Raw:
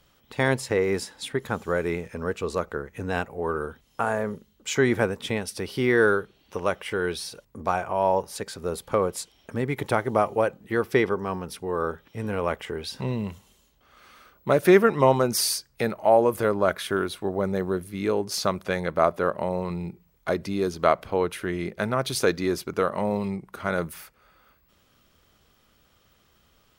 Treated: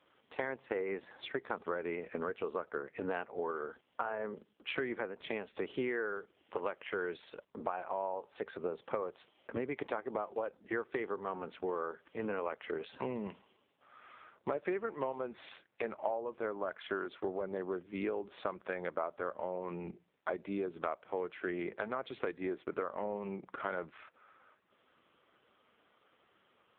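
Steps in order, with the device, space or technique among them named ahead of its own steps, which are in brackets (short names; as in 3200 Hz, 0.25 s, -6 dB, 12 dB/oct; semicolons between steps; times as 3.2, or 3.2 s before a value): voicemail (BPF 300–2800 Hz; compressor 10:1, threshold -33 dBFS, peak gain reduction 20.5 dB; gain +1 dB; AMR-NB 5.9 kbps 8000 Hz)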